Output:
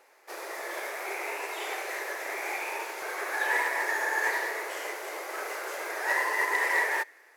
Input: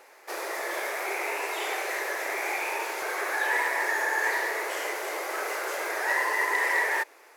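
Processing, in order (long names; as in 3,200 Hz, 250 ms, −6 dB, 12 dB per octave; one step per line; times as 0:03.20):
on a send at −18.5 dB: Butterworth high-pass 1,500 Hz + convolution reverb RT60 2.9 s, pre-delay 33 ms
on the sum: expander for the loud parts 1.5 to 1, over −37 dBFS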